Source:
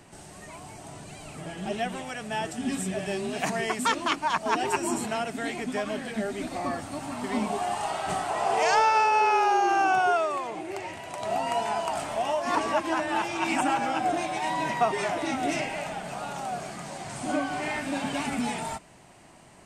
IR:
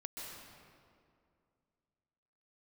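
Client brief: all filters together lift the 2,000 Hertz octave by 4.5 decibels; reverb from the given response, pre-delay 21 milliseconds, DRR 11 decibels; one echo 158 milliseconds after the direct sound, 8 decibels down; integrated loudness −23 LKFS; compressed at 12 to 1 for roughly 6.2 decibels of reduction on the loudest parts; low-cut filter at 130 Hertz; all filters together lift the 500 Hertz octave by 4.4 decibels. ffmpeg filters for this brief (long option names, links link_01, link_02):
-filter_complex "[0:a]highpass=130,equalizer=frequency=500:width_type=o:gain=6,equalizer=frequency=2000:width_type=o:gain=5.5,acompressor=threshold=-21dB:ratio=12,aecho=1:1:158:0.398,asplit=2[link_01][link_02];[1:a]atrim=start_sample=2205,adelay=21[link_03];[link_02][link_03]afir=irnorm=-1:irlink=0,volume=-9.5dB[link_04];[link_01][link_04]amix=inputs=2:normalize=0,volume=3.5dB"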